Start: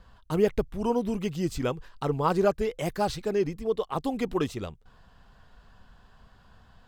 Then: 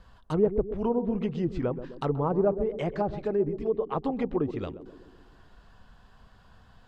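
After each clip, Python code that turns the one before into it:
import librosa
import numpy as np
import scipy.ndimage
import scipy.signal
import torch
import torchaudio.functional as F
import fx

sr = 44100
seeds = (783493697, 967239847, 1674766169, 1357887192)

y = fx.env_lowpass_down(x, sr, base_hz=740.0, full_db=-22.5)
y = fx.echo_banded(y, sr, ms=129, feedback_pct=59, hz=320.0, wet_db=-9.5)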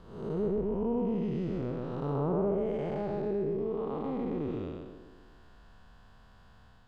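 y = fx.spec_blur(x, sr, span_ms=337.0)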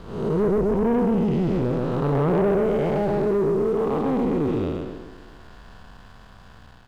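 y = fx.leveller(x, sr, passes=2)
y = y * 10.0 ** (5.5 / 20.0)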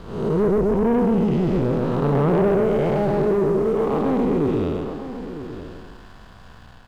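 y = x + 10.0 ** (-12.0 / 20.0) * np.pad(x, (int(958 * sr / 1000.0), 0))[:len(x)]
y = y * 10.0 ** (2.0 / 20.0)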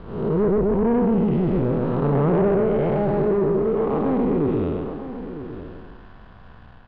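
y = fx.air_absorb(x, sr, metres=330.0)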